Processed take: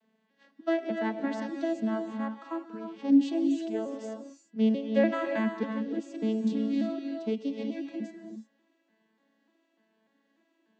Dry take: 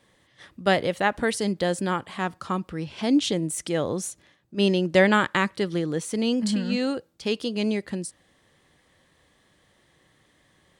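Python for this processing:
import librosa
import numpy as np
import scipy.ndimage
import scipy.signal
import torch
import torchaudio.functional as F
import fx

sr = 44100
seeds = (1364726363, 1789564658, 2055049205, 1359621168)

y = fx.vocoder_arp(x, sr, chord='major triad', root=57, every_ms=296)
y = fx.rev_gated(y, sr, seeds[0], gate_ms=380, shape='rising', drr_db=4.0)
y = F.gain(torch.from_numpy(y), -4.5).numpy()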